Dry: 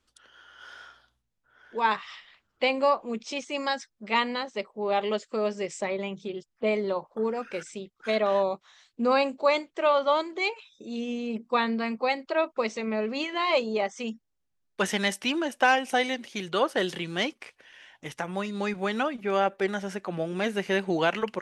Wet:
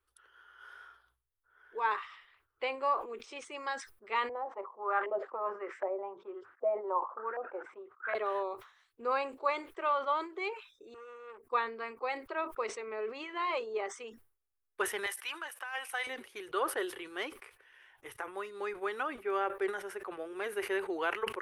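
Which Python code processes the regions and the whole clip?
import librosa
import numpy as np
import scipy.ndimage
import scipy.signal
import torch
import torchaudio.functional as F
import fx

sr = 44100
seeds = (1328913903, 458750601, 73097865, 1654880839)

y = fx.chain(x, sr, fx.filter_lfo_lowpass(shape='saw_up', hz=1.3, low_hz=600.0, high_hz=1700.0, q=4.4),
    fx.highpass(hz=300.0, slope=12),
    fx.notch(hz=430.0, q=5.2), at=(4.29, 8.15))
y = fx.chain(y, sr, fx.fixed_phaser(hz=1000.0, stages=6),
    fx.transformer_sat(knee_hz=1200.0), at=(10.94, 11.47))
y = fx.chain(y, sr, fx.highpass(hz=1000.0, slope=12),
    fx.over_compress(threshold_db=-27.0, ratio=-0.5), at=(15.06, 16.07))
y = fx.curve_eq(y, sr, hz=(110.0, 170.0, 400.0, 610.0, 1200.0, 4600.0, 7000.0, 10000.0), db=(0, -29, 4, -6, 5, -9, -10, 7))
y = fx.sustainer(y, sr, db_per_s=130.0)
y = y * 10.0 ** (-8.0 / 20.0)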